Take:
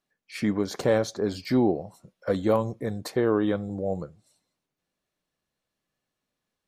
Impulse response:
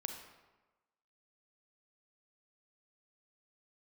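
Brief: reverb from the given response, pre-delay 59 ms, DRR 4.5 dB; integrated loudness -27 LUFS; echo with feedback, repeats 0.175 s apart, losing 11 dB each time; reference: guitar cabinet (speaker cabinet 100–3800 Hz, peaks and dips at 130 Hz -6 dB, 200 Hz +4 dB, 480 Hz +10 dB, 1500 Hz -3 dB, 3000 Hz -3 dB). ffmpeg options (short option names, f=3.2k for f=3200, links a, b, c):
-filter_complex "[0:a]aecho=1:1:175|350|525:0.282|0.0789|0.0221,asplit=2[a][b];[1:a]atrim=start_sample=2205,adelay=59[c];[b][c]afir=irnorm=-1:irlink=0,volume=-3.5dB[d];[a][d]amix=inputs=2:normalize=0,highpass=100,equalizer=f=130:t=q:w=4:g=-6,equalizer=f=200:t=q:w=4:g=4,equalizer=f=480:t=q:w=4:g=10,equalizer=f=1.5k:t=q:w=4:g=-3,equalizer=f=3k:t=q:w=4:g=-3,lowpass=f=3.8k:w=0.5412,lowpass=f=3.8k:w=1.3066,volume=-6dB"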